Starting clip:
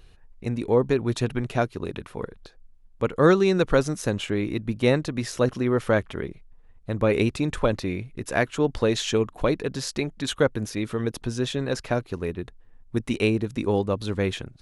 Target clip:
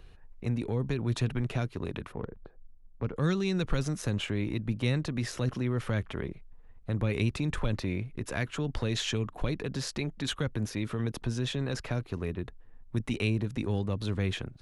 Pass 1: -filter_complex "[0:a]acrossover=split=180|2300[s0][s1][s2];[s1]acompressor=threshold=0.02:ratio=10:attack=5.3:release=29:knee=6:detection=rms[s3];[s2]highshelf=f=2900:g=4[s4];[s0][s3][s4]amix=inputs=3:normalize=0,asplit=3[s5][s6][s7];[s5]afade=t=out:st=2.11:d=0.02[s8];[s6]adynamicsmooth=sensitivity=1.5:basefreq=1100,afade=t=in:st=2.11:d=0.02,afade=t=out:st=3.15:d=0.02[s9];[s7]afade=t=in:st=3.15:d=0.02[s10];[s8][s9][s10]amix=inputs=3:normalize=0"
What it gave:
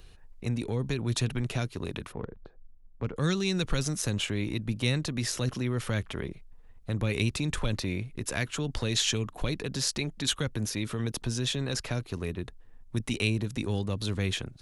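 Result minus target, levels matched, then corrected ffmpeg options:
8 kHz band +8.0 dB
-filter_complex "[0:a]acrossover=split=180|2300[s0][s1][s2];[s1]acompressor=threshold=0.02:ratio=10:attack=5.3:release=29:knee=6:detection=rms[s3];[s2]highshelf=f=2900:g=-7[s4];[s0][s3][s4]amix=inputs=3:normalize=0,asplit=3[s5][s6][s7];[s5]afade=t=out:st=2.11:d=0.02[s8];[s6]adynamicsmooth=sensitivity=1.5:basefreq=1100,afade=t=in:st=2.11:d=0.02,afade=t=out:st=3.15:d=0.02[s9];[s7]afade=t=in:st=3.15:d=0.02[s10];[s8][s9][s10]amix=inputs=3:normalize=0"

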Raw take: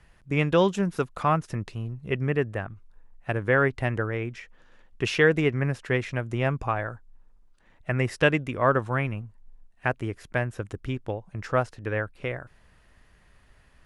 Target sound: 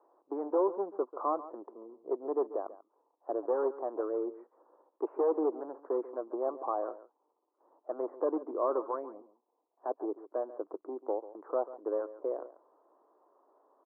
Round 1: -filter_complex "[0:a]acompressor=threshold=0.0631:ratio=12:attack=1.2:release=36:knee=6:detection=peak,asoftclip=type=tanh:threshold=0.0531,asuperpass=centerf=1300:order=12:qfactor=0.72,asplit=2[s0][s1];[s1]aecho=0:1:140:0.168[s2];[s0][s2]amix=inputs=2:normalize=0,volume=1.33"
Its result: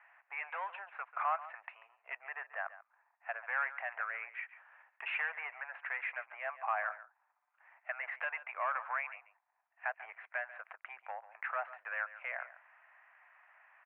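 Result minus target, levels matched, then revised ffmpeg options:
500 Hz band -12.5 dB; compression: peak gain reduction +12.5 dB
-filter_complex "[0:a]asoftclip=type=tanh:threshold=0.0531,asuperpass=centerf=590:order=12:qfactor=0.72,asplit=2[s0][s1];[s1]aecho=0:1:140:0.168[s2];[s0][s2]amix=inputs=2:normalize=0,volume=1.33"

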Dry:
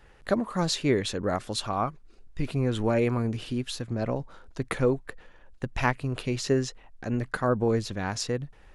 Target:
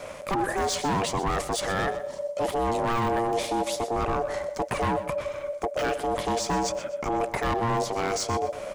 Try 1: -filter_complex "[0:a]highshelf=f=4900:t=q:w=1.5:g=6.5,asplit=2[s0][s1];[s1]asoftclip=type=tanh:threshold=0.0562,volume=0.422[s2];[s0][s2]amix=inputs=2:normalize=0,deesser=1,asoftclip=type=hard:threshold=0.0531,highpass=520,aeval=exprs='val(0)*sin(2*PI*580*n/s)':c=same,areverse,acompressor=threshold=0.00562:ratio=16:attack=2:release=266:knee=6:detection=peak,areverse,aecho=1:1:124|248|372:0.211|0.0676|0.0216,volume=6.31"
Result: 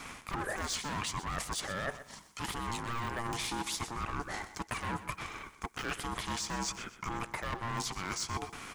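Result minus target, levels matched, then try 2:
500 Hz band -9.0 dB; compression: peak gain reduction +9 dB
-filter_complex "[0:a]highshelf=f=4900:t=q:w=1.5:g=6.5,asplit=2[s0][s1];[s1]asoftclip=type=tanh:threshold=0.0562,volume=0.422[s2];[s0][s2]amix=inputs=2:normalize=0,deesser=1,asoftclip=type=hard:threshold=0.0531,aeval=exprs='val(0)*sin(2*PI*580*n/s)':c=same,areverse,acompressor=threshold=0.0133:ratio=16:attack=2:release=266:knee=6:detection=peak,areverse,aecho=1:1:124|248|372:0.211|0.0676|0.0216,volume=6.31"

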